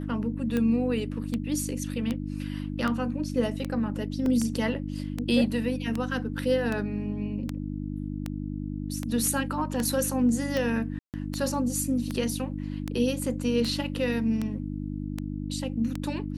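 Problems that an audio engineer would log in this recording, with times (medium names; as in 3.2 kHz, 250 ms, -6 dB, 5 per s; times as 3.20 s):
hum 50 Hz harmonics 6 -33 dBFS
tick 78 rpm -16 dBFS
4.26 s: dropout 2 ms
10.99–11.14 s: dropout 148 ms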